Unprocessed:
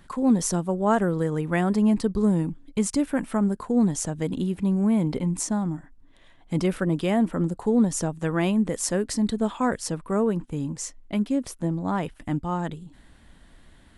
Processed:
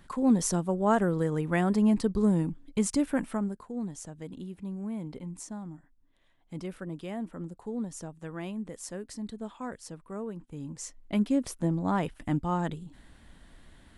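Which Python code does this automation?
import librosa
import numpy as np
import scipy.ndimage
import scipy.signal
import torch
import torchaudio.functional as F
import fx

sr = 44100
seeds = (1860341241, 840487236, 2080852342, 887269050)

y = fx.gain(x, sr, db=fx.line((3.21, -3.0), (3.68, -14.0), (10.38, -14.0), (11.18, -1.5)))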